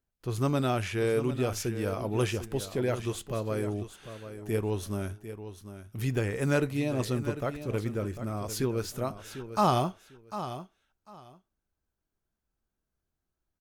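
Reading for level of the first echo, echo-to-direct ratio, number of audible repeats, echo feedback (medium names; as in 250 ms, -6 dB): -11.5 dB, -11.5 dB, 2, 19%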